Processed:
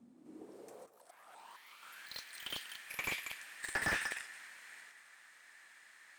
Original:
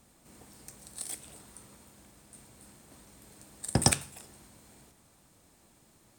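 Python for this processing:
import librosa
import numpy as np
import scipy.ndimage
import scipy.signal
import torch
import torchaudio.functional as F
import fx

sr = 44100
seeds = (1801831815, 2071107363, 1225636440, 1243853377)

p1 = fx.tilt_eq(x, sr, slope=3.0)
p2 = fx.auto_swell(p1, sr, attack_ms=584.0, at=(0.84, 1.83))
p3 = fx.filter_sweep_bandpass(p2, sr, from_hz=240.0, to_hz=1800.0, start_s=0.1, end_s=2.11, q=5.7)
p4 = fx.echo_pitch(p3, sr, ms=179, semitones=5, count=3, db_per_echo=-6.0)
p5 = p4 + fx.echo_single(p4, sr, ms=192, db=-15.0, dry=0)
p6 = fx.slew_limit(p5, sr, full_power_hz=7.5)
y = p6 * 10.0 ** (17.0 / 20.0)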